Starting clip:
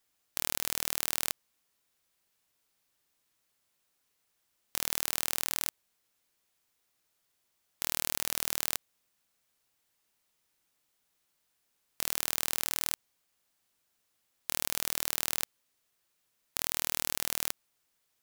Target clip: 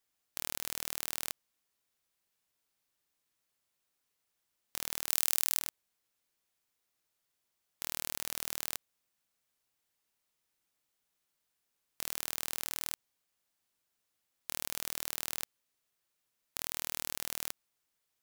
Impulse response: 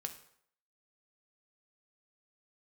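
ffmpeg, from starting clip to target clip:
-filter_complex "[0:a]asettb=1/sr,asplit=3[s0][s1][s2];[s0]atrim=end=5.094[s3];[s1]atrim=start=5.09:end=5.59,asetpts=PTS-STARTPTS,afade=t=in:d=0.004:c=qsin,afade=t=out:st=0.496:d=0.004:c=qsin,highshelf=f=3500:g=9[s4];[s2]atrim=start=5.586[s5];[s3][s4]acrossfade=d=0.004:c1=hsin:c2=qsin[s6];[s6][s5]acrossfade=d=0.004:c1=qsin:c2=hsin,volume=0.531"

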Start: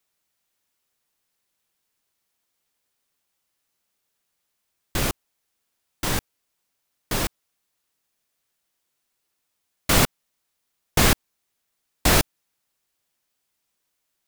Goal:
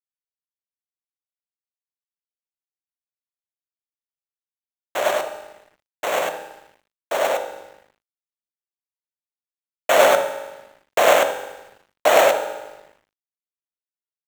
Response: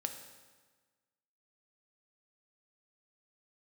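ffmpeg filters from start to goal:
-filter_complex "[0:a]acrusher=samples=9:mix=1:aa=0.000001,highpass=f=590:t=q:w=4.9,asplit=2[s0][s1];[s1]adelay=77,lowpass=f=800:p=1,volume=0.422,asplit=2[s2][s3];[s3]adelay=77,lowpass=f=800:p=1,volume=0.42,asplit=2[s4][s5];[s5]adelay=77,lowpass=f=800:p=1,volume=0.42,asplit=2[s6][s7];[s7]adelay=77,lowpass=f=800:p=1,volume=0.42,asplit=2[s8][s9];[s9]adelay=77,lowpass=f=800:p=1,volume=0.42[s10];[s0][s2][s4][s6][s8][s10]amix=inputs=6:normalize=0,asplit=2[s11][s12];[1:a]atrim=start_sample=2205,adelay=100[s13];[s12][s13]afir=irnorm=-1:irlink=0,volume=1[s14];[s11][s14]amix=inputs=2:normalize=0,aeval=exprs='sgn(val(0))*max(abs(val(0))-0.00501,0)':c=same,volume=0.891"

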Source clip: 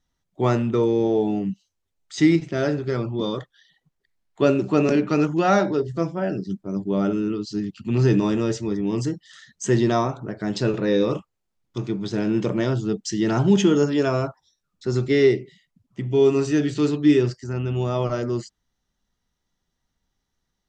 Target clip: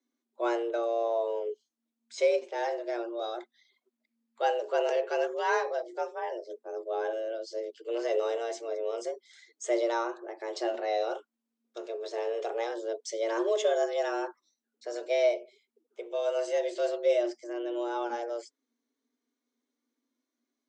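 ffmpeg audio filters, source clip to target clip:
-af "flanger=delay=2.1:depth=2.4:regen=-56:speed=0.29:shape=sinusoidal,afreqshift=230,volume=0.562"

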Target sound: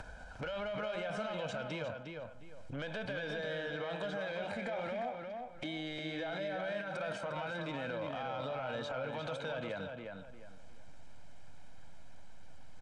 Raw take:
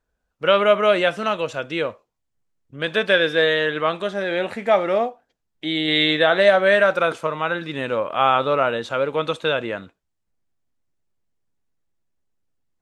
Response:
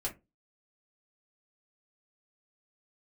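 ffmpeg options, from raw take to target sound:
-filter_complex "[0:a]highshelf=f=5600:g=-11,aecho=1:1:1.3:0.69,acompressor=mode=upward:threshold=0.0447:ratio=2.5,alimiter=limit=0.0631:level=0:latency=1:release=48,acrossover=split=280|1000|2800[s0][s1][s2][s3];[s0]acompressor=threshold=0.00316:ratio=4[s4];[s1]acompressor=threshold=0.00794:ratio=4[s5];[s2]acompressor=threshold=0.00316:ratio=4[s6];[s3]acompressor=threshold=0.00224:ratio=4[s7];[s4][s5][s6][s7]amix=inputs=4:normalize=0,asoftclip=type=tanh:threshold=0.0211,asplit=2[s8][s9];[s9]adelay=354,lowpass=f=3300:p=1,volume=0.596,asplit=2[s10][s11];[s11]adelay=354,lowpass=f=3300:p=1,volume=0.3,asplit=2[s12][s13];[s13]adelay=354,lowpass=f=3300:p=1,volume=0.3,asplit=2[s14][s15];[s15]adelay=354,lowpass=f=3300:p=1,volume=0.3[s16];[s10][s12][s14][s16]amix=inputs=4:normalize=0[s17];[s8][s17]amix=inputs=2:normalize=0,aresample=22050,aresample=44100,volume=1.26"

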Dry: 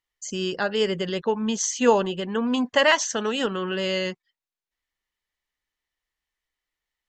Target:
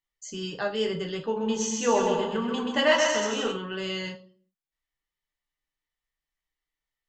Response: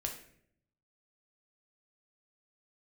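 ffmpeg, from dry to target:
-filter_complex "[0:a]asettb=1/sr,asplit=3[s0][s1][s2];[s0]atrim=end=1.244[s3];[s1]atrim=start=1.24:end=3.52,asetpts=PTS-STARTPTS,afade=t=in:d=0.004:c=qsin,afade=t=out:st=2.276:d=0.004:c=qsin,aecho=1:1:130|227.5|300.6|355.5|396.6:0.631|0.398|0.251|0.158|0.1,atrim=end_sample=100548[s4];[s2]atrim=start=3.516[s5];[s3][s4]acrossfade=d=0.004:c1=hsin:c2=qsin[s6];[s6][s5]acrossfade=d=0.004:c1=qsin:c2=hsin[s7];[1:a]atrim=start_sample=2205,asetrate=83790,aresample=44100[s8];[s7][s8]afir=irnorm=-1:irlink=0"

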